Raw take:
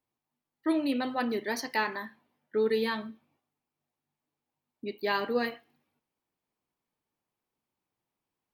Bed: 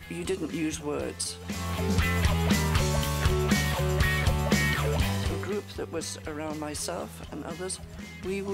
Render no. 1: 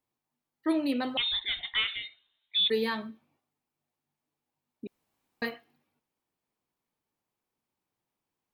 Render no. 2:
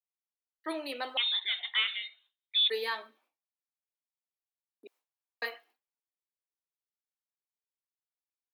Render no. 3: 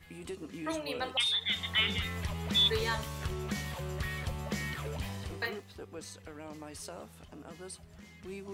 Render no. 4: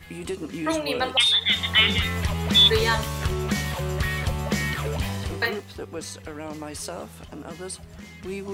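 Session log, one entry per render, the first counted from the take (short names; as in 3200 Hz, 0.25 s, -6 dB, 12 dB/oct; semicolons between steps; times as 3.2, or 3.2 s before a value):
1.17–2.7 inverted band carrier 3900 Hz; 4.87–5.42 room tone
gate with hold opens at -58 dBFS; Bessel high-pass 600 Hz, order 6
add bed -11.5 dB
gain +10.5 dB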